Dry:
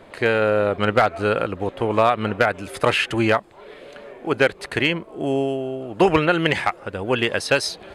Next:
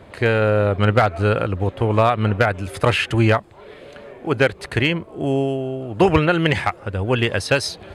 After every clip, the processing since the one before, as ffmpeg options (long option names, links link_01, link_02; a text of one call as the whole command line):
ffmpeg -i in.wav -af "equalizer=frequency=89:width=0.95:gain=12.5" out.wav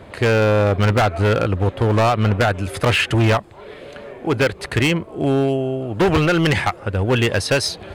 ffmpeg -i in.wav -af "asoftclip=type=hard:threshold=-15.5dB,volume=3.5dB" out.wav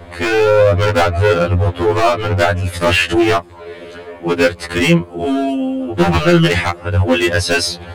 ffmpeg -i in.wav -af "afftfilt=real='re*2*eq(mod(b,4),0)':imag='im*2*eq(mod(b,4),0)':win_size=2048:overlap=0.75,volume=6.5dB" out.wav